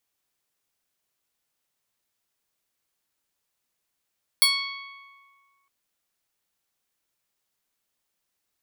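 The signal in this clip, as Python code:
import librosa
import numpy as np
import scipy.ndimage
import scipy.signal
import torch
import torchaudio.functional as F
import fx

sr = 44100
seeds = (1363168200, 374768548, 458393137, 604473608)

y = fx.pluck(sr, length_s=1.26, note=85, decay_s=1.91, pick=0.16, brightness='bright')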